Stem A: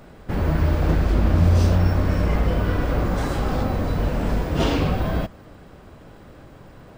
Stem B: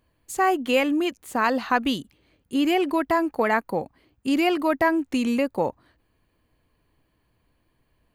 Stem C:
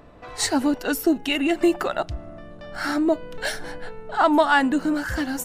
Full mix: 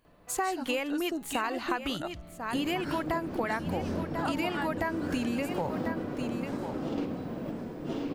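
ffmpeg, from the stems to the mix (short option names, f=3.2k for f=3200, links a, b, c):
-filter_complex "[0:a]highpass=f=100:w=0.5412,highpass=f=100:w=1.3066,equalizer=f=280:w=0.71:g=13,dynaudnorm=f=450:g=5:m=11.5dB,adelay=2250,volume=-14.5dB,asplit=2[a][b];[b]volume=-5dB[c];[1:a]asubboost=boost=7.5:cutoff=120,volume=1dB,asplit=3[d][e][f];[e]volume=-13.5dB[g];[2:a]equalizer=f=170:w=6:g=11.5,adelay=50,volume=-10.5dB[h];[f]apad=whole_len=406994[i];[a][i]sidechaingate=range=-9dB:threshold=-50dB:ratio=16:detection=peak[j];[c][g]amix=inputs=2:normalize=0,aecho=0:1:1044:1[k];[j][d][h][k]amix=inputs=4:normalize=0,lowshelf=f=270:g=-4.5,acompressor=threshold=-27dB:ratio=10"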